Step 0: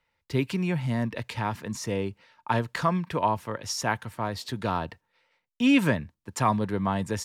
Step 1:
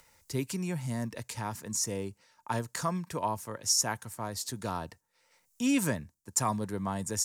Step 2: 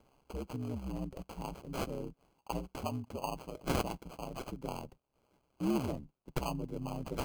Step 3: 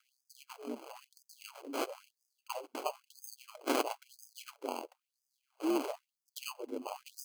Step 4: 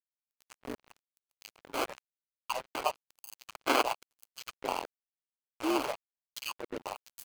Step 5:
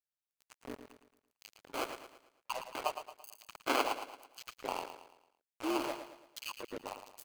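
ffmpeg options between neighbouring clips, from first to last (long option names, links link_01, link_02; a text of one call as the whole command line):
ffmpeg -i in.wav -af "highshelf=frequency=4800:width_type=q:width=1.5:gain=13.5,acompressor=mode=upward:threshold=-41dB:ratio=2.5,volume=-6.5dB" out.wav
ffmpeg -i in.wav -filter_complex "[0:a]aeval=exprs='val(0)*sin(2*PI*65*n/s)':channel_layout=same,acrossover=split=870[link_01][link_02];[link_02]acrusher=samples=24:mix=1:aa=0.000001[link_03];[link_01][link_03]amix=inputs=2:normalize=0,volume=-2dB" out.wav
ffmpeg -i in.wav -af "afftfilt=real='re*gte(b*sr/1024,220*pow(4900/220,0.5+0.5*sin(2*PI*1*pts/sr)))':imag='im*gte(b*sr/1024,220*pow(4900/220,0.5+0.5*sin(2*PI*1*pts/sr)))':win_size=1024:overlap=0.75,volume=3dB" out.wav
ffmpeg -i in.wav -filter_complex "[0:a]acrossover=split=740|4300[link_01][link_02][link_03];[link_02]dynaudnorm=framelen=700:gausssize=5:maxgain=9dB[link_04];[link_01][link_04][link_03]amix=inputs=3:normalize=0,acrusher=bits=5:mix=0:aa=0.5" out.wav
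ffmpeg -i in.wav -af "aecho=1:1:112|224|336|448|560:0.335|0.144|0.0619|0.0266|0.0115,volume=-4.5dB" out.wav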